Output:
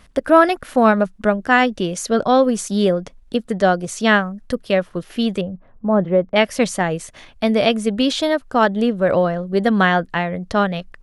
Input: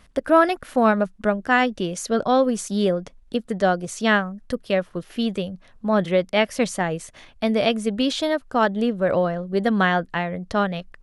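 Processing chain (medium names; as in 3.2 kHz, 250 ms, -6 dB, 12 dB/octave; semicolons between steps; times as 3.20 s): 5.41–6.36 s: low-pass 1 kHz 12 dB/octave; trim +4 dB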